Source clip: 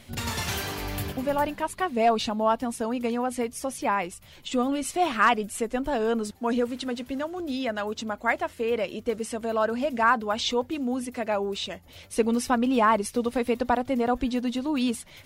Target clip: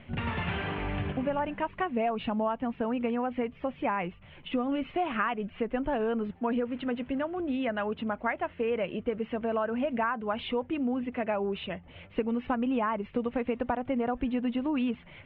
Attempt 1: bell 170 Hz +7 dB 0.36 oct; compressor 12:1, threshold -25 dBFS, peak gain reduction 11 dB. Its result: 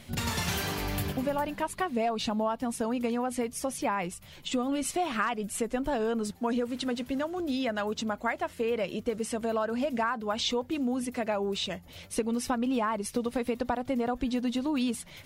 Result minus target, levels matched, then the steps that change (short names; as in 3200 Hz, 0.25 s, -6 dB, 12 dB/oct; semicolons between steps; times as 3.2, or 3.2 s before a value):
4000 Hz band +7.0 dB
add after compressor: steep low-pass 3000 Hz 48 dB/oct